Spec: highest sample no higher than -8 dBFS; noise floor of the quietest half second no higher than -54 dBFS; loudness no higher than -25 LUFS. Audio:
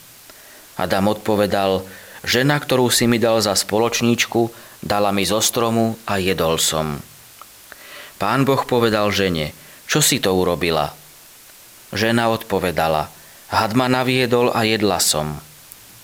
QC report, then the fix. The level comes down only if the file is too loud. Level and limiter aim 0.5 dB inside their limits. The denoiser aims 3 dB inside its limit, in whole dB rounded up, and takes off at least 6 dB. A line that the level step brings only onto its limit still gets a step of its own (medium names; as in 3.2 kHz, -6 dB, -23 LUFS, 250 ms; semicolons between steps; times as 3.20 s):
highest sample -5.0 dBFS: fail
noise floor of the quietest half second -44 dBFS: fail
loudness -18.5 LUFS: fail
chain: noise reduction 6 dB, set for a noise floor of -44 dBFS; trim -7 dB